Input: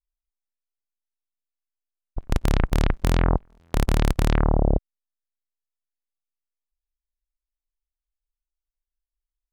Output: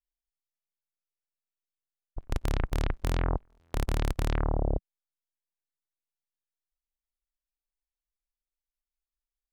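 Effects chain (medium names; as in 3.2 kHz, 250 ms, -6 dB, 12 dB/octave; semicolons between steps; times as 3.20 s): peaking EQ 190 Hz -13 dB 0.27 oct; trim -7.5 dB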